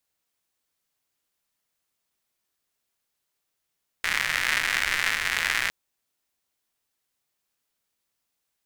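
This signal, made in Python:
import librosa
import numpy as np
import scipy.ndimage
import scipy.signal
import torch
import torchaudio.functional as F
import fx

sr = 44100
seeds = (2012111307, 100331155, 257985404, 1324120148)

y = fx.rain(sr, seeds[0], length_s=1.66, drops_per_s=170.0, hz=1900.0, bed_db=-17)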